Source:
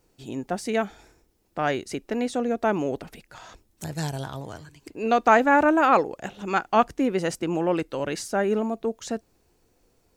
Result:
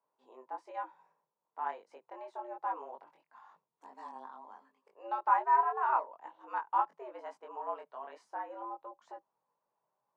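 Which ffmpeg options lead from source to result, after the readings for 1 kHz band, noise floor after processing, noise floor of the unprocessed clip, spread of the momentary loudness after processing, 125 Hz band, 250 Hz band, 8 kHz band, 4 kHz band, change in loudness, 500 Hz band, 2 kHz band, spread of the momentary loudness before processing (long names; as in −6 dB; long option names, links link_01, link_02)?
−7.0 dB, below −85 dBFS, −67 dBFS, 22 LU, below −40 dB, −31.0 dB, below −35 dB, below −25 dB, −10.5 dB, −20.5 dB, −17.0 dB, 18 LU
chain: -af "flanger=delay=20:depth=2.4:speed=1.1,afreqshift=120,bandpass=frequency=980:width_type=q:width=4.9:csg=0,volume=-2dB"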